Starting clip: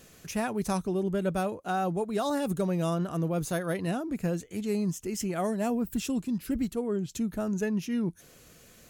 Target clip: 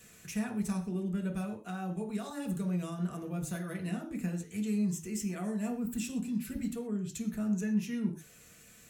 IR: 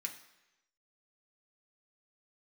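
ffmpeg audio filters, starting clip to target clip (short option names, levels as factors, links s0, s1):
-filter_complex "[0:a]acrossover=split=320[s0][s1];[s1]acompressor=threshold=0.0112:ratio=2.5[s2];[s0][s2]amix=inputs=2:normalize=0[s3];[1:a]atrim=start_sample=2205,atrim=end_sample=6174[s4];[s3][s4]afir=irnorm=-1:irlink=0"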